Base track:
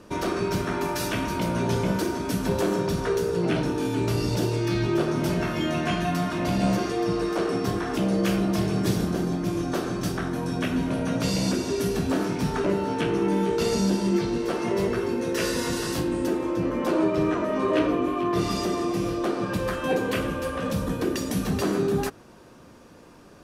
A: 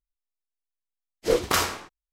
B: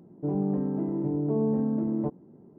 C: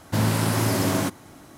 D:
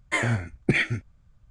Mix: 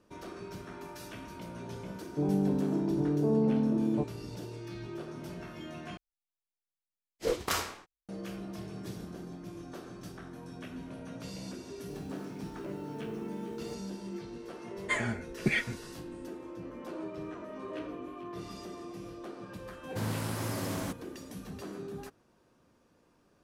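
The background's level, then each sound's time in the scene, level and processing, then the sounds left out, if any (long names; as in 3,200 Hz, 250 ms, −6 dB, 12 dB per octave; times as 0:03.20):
base track −17.5 dB
0:01.94: mix in B −1 dB
0:05.97: overwrite with A −8.5 dB
0:11.65: mix in B −16.5 dB + bit-depth reduction 8 bits, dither none
0:14.77: mix in D −7.5 dB + comb filter 4.8 ms, depth 52%
0:19.83: mix in C −12.5 dB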